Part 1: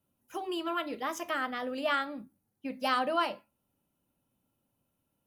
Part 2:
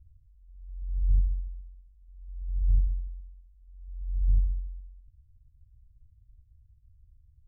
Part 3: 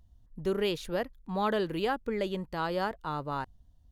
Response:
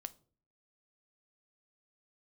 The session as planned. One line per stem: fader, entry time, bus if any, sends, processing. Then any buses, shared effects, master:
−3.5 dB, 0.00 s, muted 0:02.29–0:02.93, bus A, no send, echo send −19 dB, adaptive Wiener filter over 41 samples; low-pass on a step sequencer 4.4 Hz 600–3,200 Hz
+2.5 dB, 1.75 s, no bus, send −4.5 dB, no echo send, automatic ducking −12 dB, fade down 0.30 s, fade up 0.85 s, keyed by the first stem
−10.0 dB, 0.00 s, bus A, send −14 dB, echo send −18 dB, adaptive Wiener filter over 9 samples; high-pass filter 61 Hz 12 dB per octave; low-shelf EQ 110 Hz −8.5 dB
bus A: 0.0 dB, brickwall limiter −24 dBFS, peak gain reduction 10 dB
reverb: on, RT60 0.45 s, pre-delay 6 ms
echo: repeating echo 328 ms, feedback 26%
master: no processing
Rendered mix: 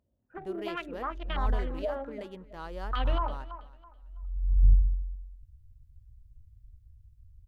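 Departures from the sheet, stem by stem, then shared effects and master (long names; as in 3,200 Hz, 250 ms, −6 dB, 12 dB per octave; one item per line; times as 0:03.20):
stem 2: entry 1.75 s → 0.35 s
reverb return −7.0 dB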